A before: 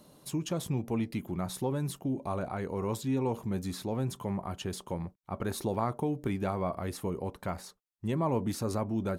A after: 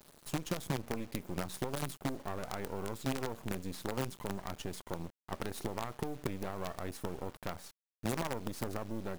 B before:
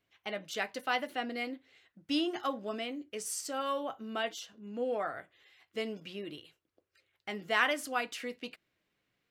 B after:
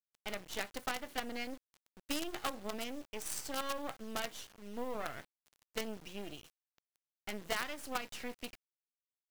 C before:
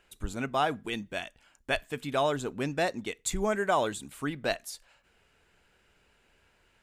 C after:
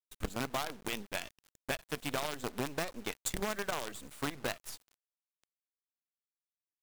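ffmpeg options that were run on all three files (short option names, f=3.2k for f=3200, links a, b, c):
-af "acompressor=threshold=-32dB:ratio=16,acrusher=bits=6:dc=4:mix=0:aa=0.000001"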